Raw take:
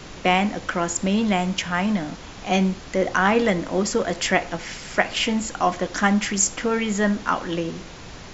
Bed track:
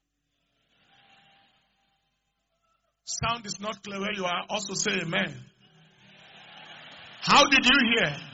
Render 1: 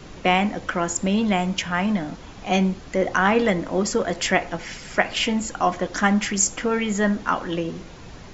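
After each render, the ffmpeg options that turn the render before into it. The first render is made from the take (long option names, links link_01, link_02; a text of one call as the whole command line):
ffmpeg -i in.wav -af "afftdn=noise_reduction=6:noise_floor=-40" out.wav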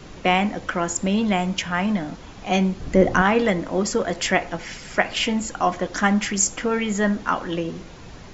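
ffmpeg -i in.wav -filter_complex "[0:a]asettb=1/sr,asplit=3[link_01][link_02][link_03];[link_01]atrim=end=2.804[link_04];[link_02]atrim=start=2.8:end=3.22,asetpts=PTS-STARTPTS,afade=type=in:duration=0.004:curve=qsin,afade=type=out:start_time=0.416:duration=0.004:curve=qsin,lowshelf=frequency=410:gain=11.5[link_05];[link_03]atrim=start=3.216[link_06];[link_04][link_05]acrossfade=duration=0.004:curve1=hsin:curve2=qsin[link_07];[link_07][link_06]acrossfade=duration=0.004:curve1=qsin:curve2=hsin" out.wav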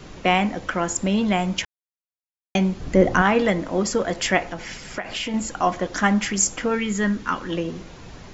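ffmpeg -i in.wav -filter_complex "[0:a]asettb=1/sr,asplit=3[link_01][link_02][link_03];[link_01]atrim=end=4.504[link_04];[link_02]atrim=start=4.5:end=5.34,asetpts=PTS-STARTPTS,afade=type=in:duration=0.004:curve=qsin,afade=type=out:start_time=0.836:duration=0.004:curve=qsin,acompressor=threshold=-24dB:ratio=6:attack=3.2:release=140:knee=1:detection=peak[link_05];[link_03]atrim=start=5.336[link_06];[link_04][link_05]acrossfade=duration=0.004:curve1=hsin:curve2=qsin[link_07];[link_07][link_06]acrossfade=duration=0.004:curve1=qsin:curve2=hsin,asettb=1/sr,asplit=3[link_08][link_09][link_10];[link_08]atrim=end=6.754[link_11];[link_09]atrim=start=6.75:end=7.5,asetpts=PTS-STARTPTS,afade=type=in:duration=0.004:curve=qsin,afade=type=out:start_time=0.746:duration=0.004:curve=qsin,equalizer=frequency=690:width_type=o:width=0.66:gain=-11.5[link_12];[link_10]atrim=start=7.496[link_13];[link_11][link_12]acrossfade=duration=0.004:curve1=hsin:curve2=qsin[link_14];[link_14][link_13]acrossfade=duration=0.004:curve1=qsin:curve2=hsin,asplit=3[link_15][link_16][link_17];[link_15]atrim=end=1.65,asetpts=PTS-STARTPTS,afade=type=out:start_time=1.646:duration=0.004:curve=hsin[link_18];[link_16]atrim=start=1.65:end=2.55,asetpts=PTS-STARTPTS,volume=0[link_19];[link_17]atrim=start=2.55,asetpts=PTS-STARTPTS,afade=type=in:duration=0.004:curve=hsin[link_20];[link_18][link_19][link_20]concat=n=3:v=0:a=1" out.wav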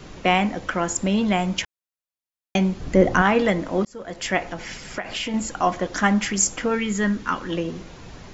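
ffmpeg -i in.wav -filter_complex "[0:a]asplit=2[link_01][link_02];[link_01]atrim=end=3.85,asetpts=PTS-STARTPTS,afade=type=out:start_time=3.846:duration=0.004:curve=hsin[link_03];[link_02]atrim=start=3.85,asetpts=PTS-STARTPTS,afade=type=in:duration=0.68[link_04];[link_03][link_04]concat=n=2:v=0:a=1" out.wav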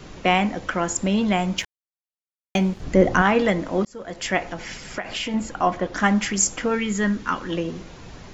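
ffmpeg -i in.wav -filter_complex "[0:a]asettb=1/sr,asplit=3[link_01][link_02][link_03];[link_01]atrim=end=1.584[link_04];[link_02]atrim=start=1.58:end=2.83,asetpts=PTS-STARTPTS,afade=type=in:duration=0.004:curve=qsin,afade=type=out:start_time=1.246:duration=0.004:curve=qsin,aeval=exprs='sgn(val(0))*max(abs(val(0))-0.00596,0)':channel_layout=same[link_05];[link_03]atrim=start=2.826[link_06];[link_04][link_05]acrossfade=duration=0.004:curve1=hsin:curve2=qsin[link_07];[link_07][link_06]acrossfade=duration=0.004:curve1=qsin:curve2=hsin,asettb=1/sr,asplit=3[link_08][link_09][link_10];[link_08]atrim=end=5.344[link_11];[link_09]atrim=start=5.34:end=6,asetpts=PTS-STARTPTS,afade=type=in:duration=0.004:curve=qsin,afade=type=out:start_time=0.656:duration=0.004:curve=qsin,aemphasis=mode=reproduction:type=50fm[link_12];[link_10]atrim=start=5.996[link_13];[link_11][link_12]acrossfade=duration=0.004:curve1=hsin:curve2=qsin[link_14];[link_14][link_13]acrossfade=duration=0.004:curve1=qsin:curve2=hsin" out.wav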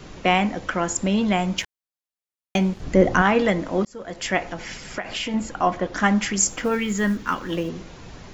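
ffmpeg -i in.wav -filter_complex "[0:a]asplit=3[link_01][link_02][link_03];[link_01]afade=type=out:start_time=6.46:duration=0.02[link_04];[link_02]acrusher=bits=8:mode=log:mix=0:aa=0.000001,afade=type=in:start_time=6.46:duration=0.02,afade=type=out:start_time=7.68:duration=0.02[link_05];[link_03]afade=type=in:start_time=7.68:duration=0.02[link_06];[link_04][link_05][link_06]amix=inputs=3:normalize=0" out.wav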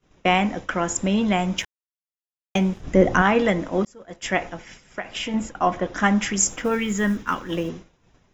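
ffmpeg -i in.wav -af "agate=range=-33dB:threshold=-27dB:ratio=3:detection=peak,bandreject=frequency=4400:width=6.1" out.wav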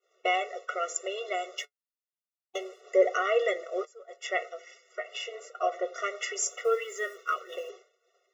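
ffmpeg -i in.wav -af "flanger=delay=5.6:depth=1.6:regen=55:speed=0.85:shape=triangular,afftfilt=real='re*eq(mod(floor(b*sr/1024/370),2),1)':imag='im*eq(mod(floor(b*sr/1024/370),2),1)':win_size=1024:overlap=0.75" out.wav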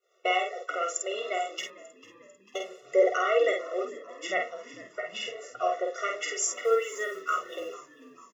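ffmpeg -i in.wav -filter_complex "[0:a]asplit=2[link_01][link_02];[link_02]adelay=49,volume=-4dB[link_03];[link_01][link_03]amix=inputs=2:normalize=0,asplit=5[link_04][link_05][link_06][link_07][link_08];[link_05]adelay=446,afreqshift=-64,volume=-19.5dB[link_09];[link_06]adelay=892,afreqshift=-128,volume=-24.7dB[link_10];[link_07]adelay=1338,afreqshift=-192,volume=-29.9dB[link_11];[link_08]adelay=1784,afreqshift=-256,volume=-35.1dB[link_12];[link_04][link_09][link_10][link_11][link_12]amix=inputs=5:normalize=0" out.wav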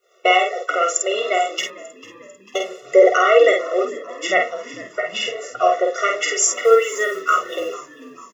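ffmpeg -i in.wav -af "volume=11.5dB,alimiter=limit=-2dB:level=0:latency=1" out.wav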